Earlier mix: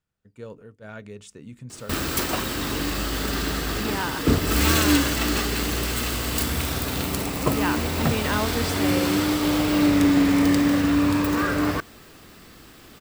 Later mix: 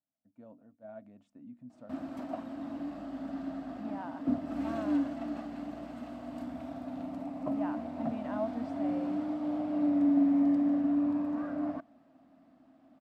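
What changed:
background -3.0 dB; master: add double band-pass 420 Hz, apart 1.3 oct

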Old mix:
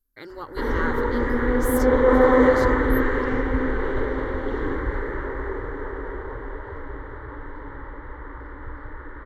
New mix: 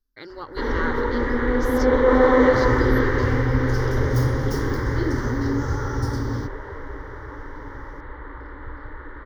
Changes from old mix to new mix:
first sound: remove air absorption 58 m; second sound: unmuted; master: add resonant high shelf 6800 Hz -8.5 dB, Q 3

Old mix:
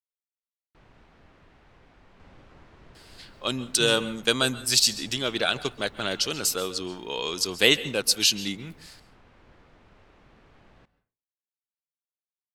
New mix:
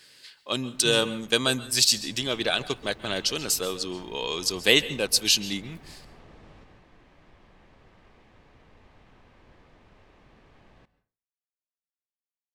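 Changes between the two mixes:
speech: entry -2.95 s; second sound: send on; master: add notch 1400 Hz, Q 11

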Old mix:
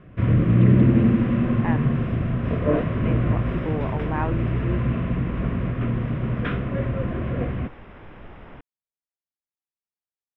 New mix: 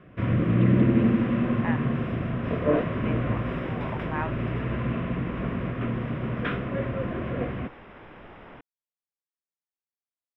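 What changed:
speech: add HPF 950 Hz; master: add low shelf 130 Hz -11.5 dB

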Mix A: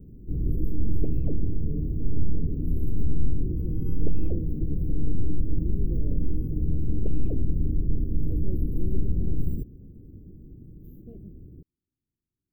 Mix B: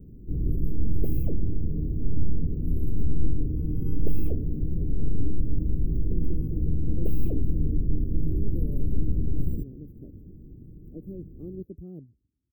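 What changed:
speech: entry +2.65 s; second sound: remove air absorption 230 m

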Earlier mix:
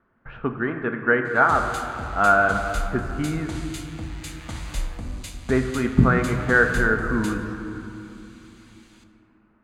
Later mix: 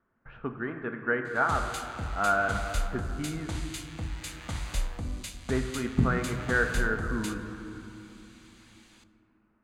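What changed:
speech -8.5 dB; background: send -7.5 dB

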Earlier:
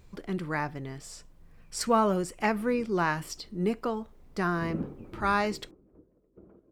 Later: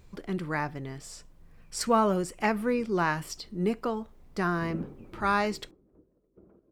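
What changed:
background -5.0 dB; reverb: on

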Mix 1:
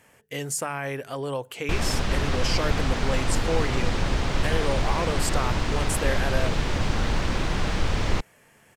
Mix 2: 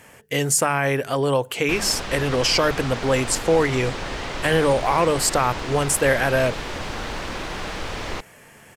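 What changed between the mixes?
speech +9.5 dB; background: add tone controls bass -10 dB, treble -1 dB

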